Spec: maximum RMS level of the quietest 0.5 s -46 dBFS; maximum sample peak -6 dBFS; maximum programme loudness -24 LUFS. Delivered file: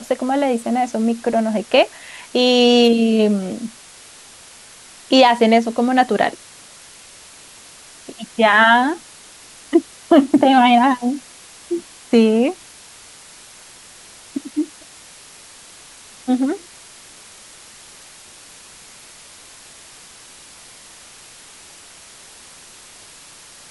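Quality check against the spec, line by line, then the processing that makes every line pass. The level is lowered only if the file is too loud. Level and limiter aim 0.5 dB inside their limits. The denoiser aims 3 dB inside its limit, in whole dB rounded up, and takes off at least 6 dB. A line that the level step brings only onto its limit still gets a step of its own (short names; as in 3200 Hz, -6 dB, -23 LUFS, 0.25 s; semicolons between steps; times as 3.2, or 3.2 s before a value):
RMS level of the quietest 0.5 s -43 dBFS: fail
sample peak -2.0 dBFS: fail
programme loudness -16.5 LUFS: fail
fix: gain -8 dB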